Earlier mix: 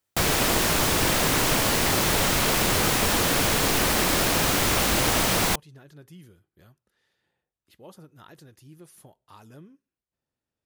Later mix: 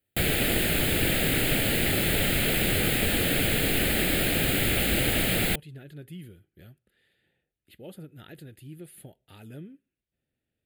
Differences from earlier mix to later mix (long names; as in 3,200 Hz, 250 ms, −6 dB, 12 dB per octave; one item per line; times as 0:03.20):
speech +6.0 dB
master: add phaser with its sweep stopped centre 2,500 Hz, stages 4